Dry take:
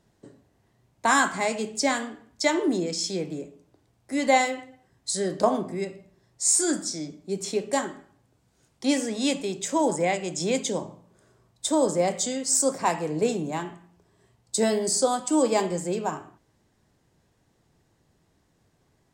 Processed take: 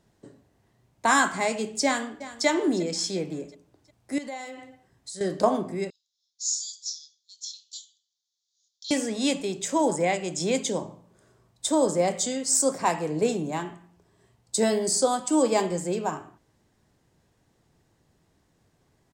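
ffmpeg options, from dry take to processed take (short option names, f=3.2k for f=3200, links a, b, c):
-filter_complex "[0:a]asplit=2[a][b];[b]afade=t=in:st=1.84:d=0.01,afade=t=out:st=2.46:d=0.01,aecho=0:1:360|720|1080|1440:0.177828|0.0800226|0.0360102|0.0162046[c];[a][c]amix=inputs=2:normalize=0,asettb=1/sr,asplit=3[d][e][f];[d]atrim=end=4.184[g];[e]atrim=start=4.18:end=5.21,asetpts=PTS-STARTPTS,afade=t=in:d=0.004:c=qsin,afade=t=out:st=1.026:d=0.004:c=qsin,acompressor=threshold=-39dB:ratio=3:attack=3.2:release=140:knee=1:detection=peak[h];[f]atrim=start=5.206[i];[g][h]acrossfade=d=0.004:c1=hsin:c2=qsin[j];[j][i]acrossfade=d=0.004:c1=qsin:c2=hsin,asettb=1/sr,asplit=3[k][l][m];[k]atrim=end=5.904[n];[l]atrim=start=5.9:end=8.91,asetpts=PTS-STARTPTS,afade=t=in:d=0.004:c=qsin,afade=t=out:st=3.006:d=0.004:c=qsin,asuperpass=centerf=4900:order=12:qfactor=1.4[o];[m]atrim=start=8.906[p];[n][o]acrossfade=d=0.004:c1=hsin:c2=qsin[q];[q][p]acrossfade=d=0.004:c1=qsin:c2=hsin"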